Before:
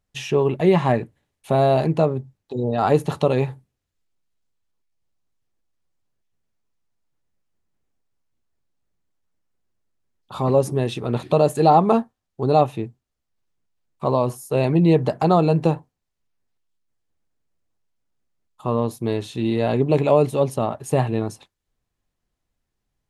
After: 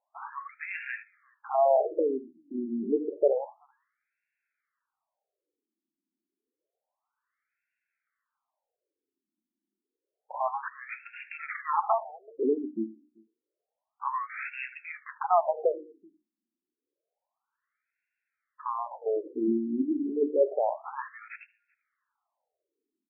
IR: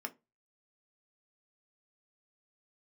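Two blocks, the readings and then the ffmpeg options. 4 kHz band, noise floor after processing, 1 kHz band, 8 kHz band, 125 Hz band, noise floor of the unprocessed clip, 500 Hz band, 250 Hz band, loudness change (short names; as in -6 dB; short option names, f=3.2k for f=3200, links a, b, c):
under -25 dB, under -85 dBFS, -8.0 dB, under -35 dB, under -35 dB, -80 dBFS, -9.5 dB, -11.0 dB, -10.0 dB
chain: -filter_complex "[0:a]highshelf=f=4.9k:g=11.5,bandreject=f=60:t=h:w=6,bandreject=f=120:t=h:w=6,bandreject=f=180:t=h:w=6,bandreject=f=240:t=h:w=6,bandreject=f=300:t=h:w=6,bandreject=f=360:t=h:w=6,asplit=2[a][b];[b]acompressor=threshold=-32dB:ratio=6,volume=-1.5dB[c];[a][c]amix=inputs=2:normalize=0,acrusher=samples=7:mix=1:aa=0.000001,asplit=2[d][e];[e]adelay=384.8,volume=-28dB,highshelf=f=4k:g=-8.66[f];[d][f]amix=inputs=2:normalize=0,asplit=2[g][h];[1:a]atrim=start_sample=2205,adelay=73[i];[h][i]afir=irnorm=-1:irlink=0,volume=-17.5dB[j];[g][j]amix=inputs=2:normalize=0,afftfilt=real='re*between(b*sr/1024,250*pow(2000/250,0.5+0.5*sin(2*PI*0.29*pts/sr))/1.41,250*pow(2000/250,0.5+0.5*sin(2*PI*0.29*pts/sr))*1.41)':imag='im*between(b*sr/1024,250*pow(2000/250,0.5+0.5*sin(2*PI*0.29*pts/sr))/1.41,250*pow(2000/250,0.5+0.5*sin(2*PI*0.29*pts/sr))*1.41)':win_size=1024:overlap=0.75,volume=-3.5dB"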